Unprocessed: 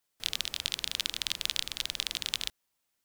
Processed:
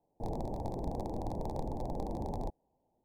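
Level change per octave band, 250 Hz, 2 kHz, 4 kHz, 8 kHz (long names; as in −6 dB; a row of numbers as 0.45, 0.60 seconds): +16.0 dB, below −25 dB, −32.5 dB, −25.0 dB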